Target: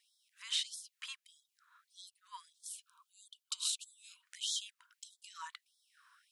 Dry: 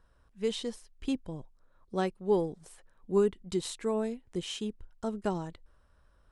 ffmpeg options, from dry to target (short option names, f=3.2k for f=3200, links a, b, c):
-filter_complex "[0:a]asplit=2[a][b];[b]acompressor=threshold=-42dB:ratio=6,volume=1dB[c];[a][c]amix=inputs=2:normalize=0,alimiter=level_in=1.5dB:limit=-24dB:level=0:latency=1:release=14,volume=-1.5dB,asettb=1/sr,asplit=3[d][e][f];[d]atrim=end=2.504[g];[e]atrim=start=2.5:end=4.23,asetpts=PTS-STARTPTS,afade=t=in:d=0.004:c=qsin,afade=t=out:st=1.726:d=0.004:c=qsin,asuperstop=centerf=1900:order=4:qfactor=1.4[h];[f]atrim=start=4.226[i];[g][h]acrossfade=d=0.004:c1=hsin:c2=qsin[j];[j][i]acrossfade=d=0.004:c1=qsin:c2=hsin,afftfilt=real='re*gte(b*sr/1024,910*pow(3300/910,0.5+0.5*sin(2*PI*1.6*pts/sr)))':imag='im*gte(b*sr/1024,910*pow(3300/910,0.5+0.5*sin(2*PI*1.6*pts/sr)))':win_size=1024:overlap=0.75,volume=3dB"